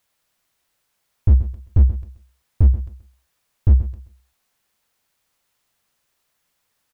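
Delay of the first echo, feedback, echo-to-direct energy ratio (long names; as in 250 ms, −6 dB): 130 ms, 24%, −12.5 dB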